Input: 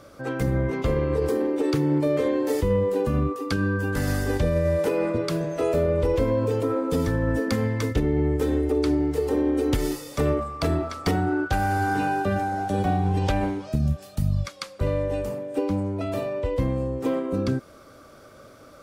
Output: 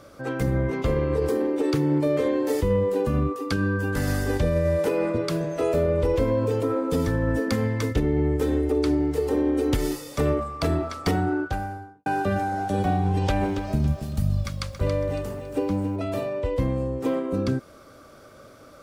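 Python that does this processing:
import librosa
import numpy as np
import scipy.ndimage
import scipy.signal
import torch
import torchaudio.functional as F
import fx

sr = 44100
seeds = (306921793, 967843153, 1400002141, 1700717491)

y = fx.studio_fade_out(x, sr, start_s=11.19, length_s=0.87)
y = fx.echo_crushed(y, sr, ms=278, feedback_pct=35, bits=9, wet_db=-9, at=(13.12, 15.96))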